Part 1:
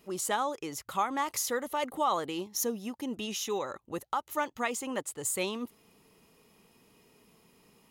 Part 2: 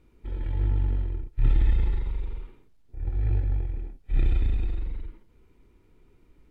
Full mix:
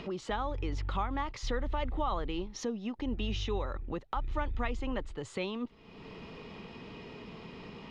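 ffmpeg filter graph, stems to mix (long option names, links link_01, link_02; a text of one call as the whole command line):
ffmpeg -i stem1.wav -i stem2.wav -filter_complex "[0:a]lowpass=frequency=4100:width=0.5412,lowpass=frequency=4100:width=1.3066,acompressor=mode=upward:threshold=-32dB:ratio=2.5,volume=-0.5dB[link_01];[1:a]alimiter=limit=-20dB:level=0:latency=1:release=171,adelay=50,volume=-13dB[link_02];[link_01][link_02]amix=inputs=2:normalize=0,acrossover=split=240[link_03][link_04];[link_04]acompressor=threshold=-39dB:ratio=1.5[link_05];[link_03][link_05]amix=inputs=2:normalize=0,lowshelf=frequency=140:gain=5" out.wav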